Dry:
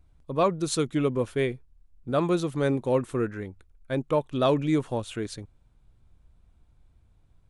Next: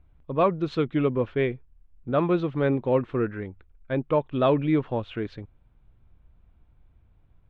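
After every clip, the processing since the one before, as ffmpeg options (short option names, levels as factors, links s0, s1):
-af "lowpass=f=3100:w=0.5412,lowpass=f=3100:w=1.3066,volume=1.19"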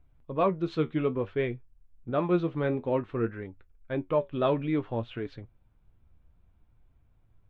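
-af "flanger=delay=6.9:depth=6.3:regen=58:speed=0.57:shape=triangular"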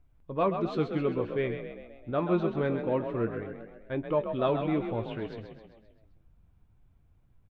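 -filter_complex "[0:a]asplit=7[s0][s1][s2][s3][s4][s5][s6];[s1]adelay=131,afreqshift=37,volume=0.398[s7];[s2]adelay=262,afreqshift=74,volume=0.214[s8];[s3]adelay=393,afreqshift=111,volume=0.116[s9];[s4]adelay=524,afreqshift=148,volume=0.0624[s10];[s5]adelay=655,afreqshift=185,volume=0.0339[s11];[s6]adelay=786,afreqshift=222,volume=0.0182[s12];[s0][s7][s8][s9][s10][s11][s12]amix=inputs=7:normalize=0,volume=0.841"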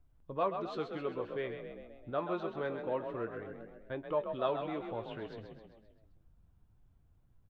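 -filter_complex "[0:a]equalizer=f=2300:t=o:w=0.33:g=-5.5,acrossover=split=440[s0][s1];[s0]acompressor=threshold=0.00891:ratio=6[s2];[s2][s1]amix=inputs=2:normalize=0,volume=0.668"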